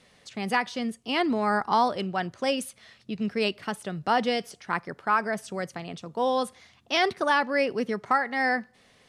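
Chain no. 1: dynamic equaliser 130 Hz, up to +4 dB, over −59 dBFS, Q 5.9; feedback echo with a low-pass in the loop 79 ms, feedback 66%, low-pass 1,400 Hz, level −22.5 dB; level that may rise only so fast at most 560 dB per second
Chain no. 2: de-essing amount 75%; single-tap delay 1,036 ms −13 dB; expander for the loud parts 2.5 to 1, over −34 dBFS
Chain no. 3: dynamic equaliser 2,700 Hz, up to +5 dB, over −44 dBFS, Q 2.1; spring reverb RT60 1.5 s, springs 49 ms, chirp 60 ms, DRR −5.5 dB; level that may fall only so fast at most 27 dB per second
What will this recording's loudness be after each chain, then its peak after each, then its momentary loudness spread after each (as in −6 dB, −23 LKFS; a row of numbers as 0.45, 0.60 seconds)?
−27.5, −32.0, −19.5 LKFS; −10.5, −11.5, −5.0 dBFS; 11, 16, 9 LU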